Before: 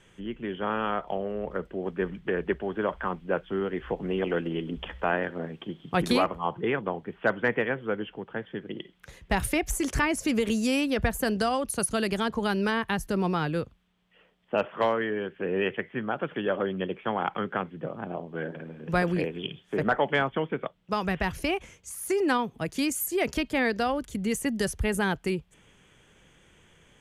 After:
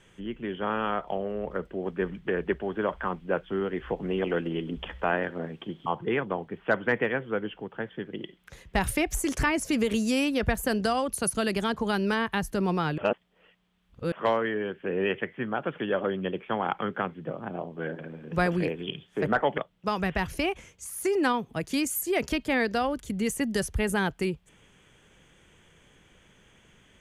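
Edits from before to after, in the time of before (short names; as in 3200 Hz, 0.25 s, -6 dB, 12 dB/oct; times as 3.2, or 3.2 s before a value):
5.86–6.42 cut
13.54–14.68 reverse
20.14–20.63 cut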